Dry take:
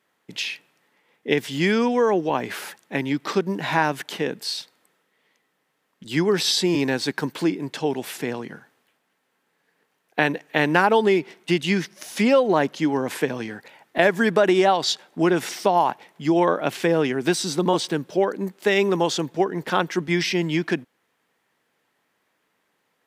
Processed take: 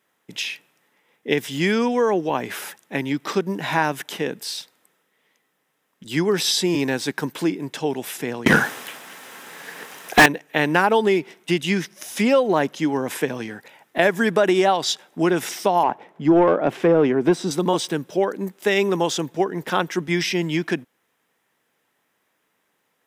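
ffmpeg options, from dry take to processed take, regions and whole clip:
-filter_complex "[0:a]asettb=1/sr,asplit=3[a][b][c];[a]atrim=end=8.464[d];[b]atrim=start=8.46:end=10.26,asetpts=PTS-STARTPTS,afade=t=in:d=0.004:c=qsin,afade=t=out:st=1.796:d=0.004:c=qsin,bass=f=250:g=7,treble=f=4k:g=8,asplit=2[e][f];[f]highpass=f=720:p=1,volume=39dB,asoftclip=type=tanh:threshold=-2dB[g];[e][g]amix=inputs=2:normalize=0,lowpass=f=2.8k:p=1,volume=-6dB[h];[c]atrim=start=10.256[i];[d][h]acrossfade=d=0.004:c1=hsin:c2=qsin[j];[j][i]acrossfade=d=0.004:c1=qsin:c2=hsin,asettb=1/sr,asplit=3[k][l][m];[k]atrim=end=15.834[n];[l]atrim=start=15.83:end=17.51,asetpts=PTS-STARTPTS,afade=t=in:d=0.004:c=qsin,afade=t=out:st=1.676:d=0.004:c=qsin,tiltshelf=f=740:g=6.5,asplit=2[o][p];[p]highpass=f=720:p=1,volume=14dB,asoftclip=type=tanh:threshold=-6dB[q];[o][q]amix=inputs=2:normalize=0,lowpass=f=1.2k:p=1,volume=-6dB[r];[m]atrim=start=17.506[s];[n][r]acrossfade=d=0.004:c1=hsin:c2=qsin[t];[t][s]acrossfade=d=0.004:c1=qsin:c2=hsin,highshelf=f=8.7k:g=7,bandreject=f=4.4k:w=11"

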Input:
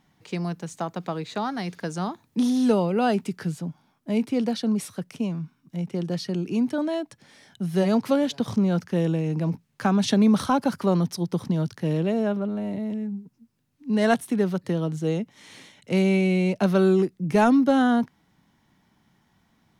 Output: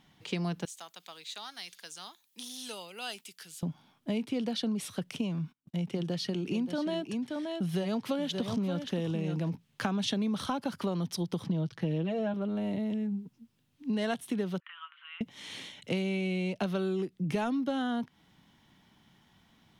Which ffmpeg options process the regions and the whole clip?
-filter_complex "[0:a]asettb=1/sr,asplit=3[a][b][c];[a]atrim=end=0.654[d];[b]atrim=start=0.65:end=3.63,asetpts=PTS-STARTPTS,afade=t=in:d=0.004:c=qsin,afade=t=out:st=2.976:d=0.004:c=qsin,aderivative,deesser=0.9[e];[c]atrim=start=3.626[f];[d][e]acrossfade=d=0.004:c1=hsin:c2=qsin[g];[g][f]acrossfade=d=0.004:c1=qsin:c2=hsin,asettb=1/sr,asplit=3[h][i][j];[h]atrim=end=5.384[k];[i]atrim=start=5.38:end=9.5,asetpts=PTS-STARTPTS,afade=t=in:d=0.004:c=qsin,afade=t=out:st=4.116:d=0.004:c=qsin,agate=range=-29dB:threshold=-53dB:ratio=16:release=100:detection=peak,aecho=1:1:576:0.335,atrim=end_sample=181692[l];[j]atrim=start=9.496[m];[k][l]acrossfade=d=0.004:c1=hsin:c2=qsin[n];[n][m]acrossfade=d=0.004:c1=qsin:c2=hsin,asettb=1/sr,asplit=3[o][p][q];[o]atrim=end=11.454[r];[p]atrim=start=11.45:end=12.34,asetpts=PTS-STARTPTS,afade=t=in:d=0.004:c=qsin,afade=t=out:st=0.886:d=0.004:c=qsin,lowpass=f=2.9k:p=1,aecho=1:1:6.1:0.77,atrim=end_sample=39249[s];[q]atrim=start=12.336[t];[r][s]acrossfade=d=0.004:c1=hsin:c2=qsin[u];[u][t]acrossfade=d=0.004:c1=qsin:c2=hsin,asettb=1/sr,asplit=3[v][w][x];[v]atrim=end=14.604[y];[w]atrim=start=14.6:end=15.21,asetpts=PTS-STARTPTS,afade=t=in:d=0.004:c=qsin,afade=t=out:st=0.606:d=0.004:c=qsin,acompressor=threshold=-27dB:ratio=5:attack=3.2:release=140:knee=1:detection=peak,asuperpass=centerf=1800:order=12:qfactor=0.89,equalizer=f=1.4k:w=5.1:g=6[z];[x]atrim=start=15.206[aa];[y][z]acrossfade=d=0.004:c1=hsin:c2=qsin[ab];[ab][aa]acrossfade=d=0.004:c1=qsin:c2=hsin,equalizer=f=3.2k:t=o:w=0.68:g=8,acompressor=threshold=-29dB:ratio=6"

